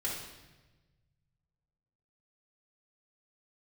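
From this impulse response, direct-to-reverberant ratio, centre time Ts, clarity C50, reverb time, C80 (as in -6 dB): -6.0 dB, 56 ms, 1.5 dB, 1.2 s, 5.0 dB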